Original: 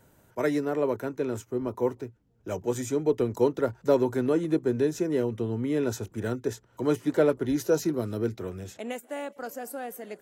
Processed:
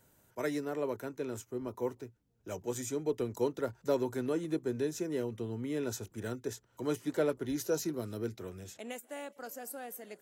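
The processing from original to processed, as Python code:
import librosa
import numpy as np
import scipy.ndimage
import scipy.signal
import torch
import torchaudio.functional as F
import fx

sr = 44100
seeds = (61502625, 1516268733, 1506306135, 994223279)

y = fx.high_shelf(x, sr, hz=2800.0, db=7.5)
y = y * 10.0 ** (-8.5 / 20.0)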